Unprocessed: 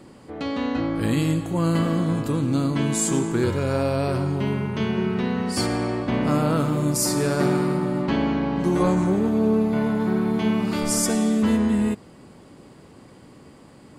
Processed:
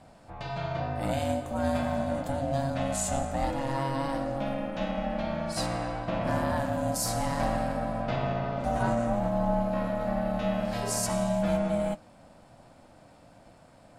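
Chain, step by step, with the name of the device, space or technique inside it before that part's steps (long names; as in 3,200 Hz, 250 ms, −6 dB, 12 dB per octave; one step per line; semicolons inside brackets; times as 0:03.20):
alien voice (ring modulation 410 Hz; flanger 1.1 Hz, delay 7.7 ms, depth 3.3 ms, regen −63%)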